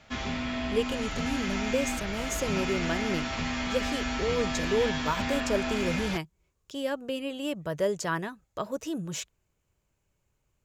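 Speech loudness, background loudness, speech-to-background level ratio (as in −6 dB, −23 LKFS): −32.5 LKFS, −31.5 LKFS, −1.0 dB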